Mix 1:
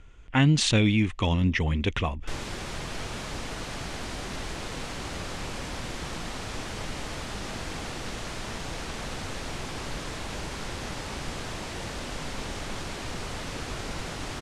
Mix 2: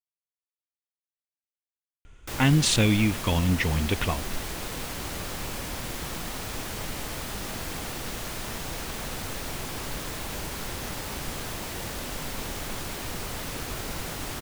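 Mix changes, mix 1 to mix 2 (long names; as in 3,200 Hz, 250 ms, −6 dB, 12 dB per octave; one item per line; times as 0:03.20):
speech: entry +2.05 s
master: remove Bessel low-pass filter 6,700 Hz, order 4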